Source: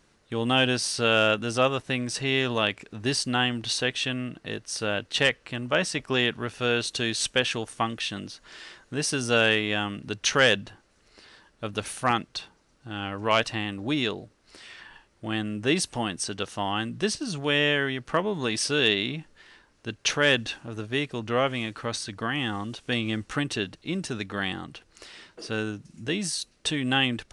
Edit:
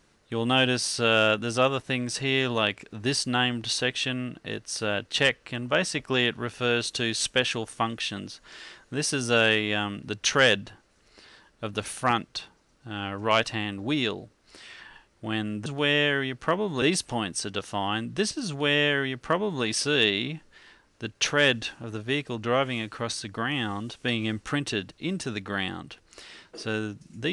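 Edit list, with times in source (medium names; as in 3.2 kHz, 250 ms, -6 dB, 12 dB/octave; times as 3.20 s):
17.32–18.48 s: copy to 15.66 s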